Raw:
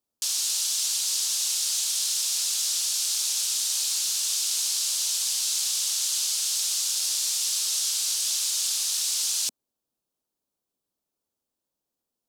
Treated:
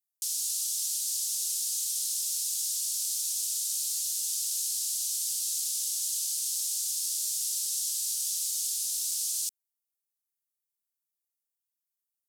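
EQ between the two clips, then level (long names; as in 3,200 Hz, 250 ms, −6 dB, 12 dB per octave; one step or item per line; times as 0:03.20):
high-pass filter 320 Hz
first difference
parametric band 12,000 Hz +4.5 dB 2 octaves
−8.0 dB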